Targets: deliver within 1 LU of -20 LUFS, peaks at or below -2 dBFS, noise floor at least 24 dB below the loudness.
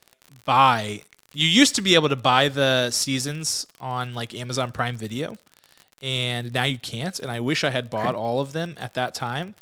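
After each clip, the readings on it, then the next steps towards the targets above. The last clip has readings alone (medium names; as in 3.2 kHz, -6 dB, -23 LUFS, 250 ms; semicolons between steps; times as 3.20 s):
tick rate 42 per s; loudness -22.5 LUFS; peak level -1.5 dBFS; loudness target -20.0 LUFS
-> de-click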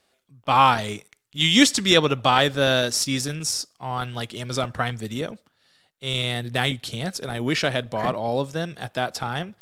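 tick rate 0.21 per s; loudness -22.5 LUFS; peak level -2.5 dBFS; loudness target -20.0 LUFS
-> trim +2.5 dB; peak limiter -2 dBFS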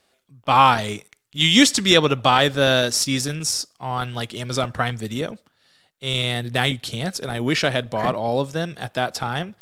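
loudness -20.5 LUFS; peak level -2.0 dBFS; noise floor -67 dBFS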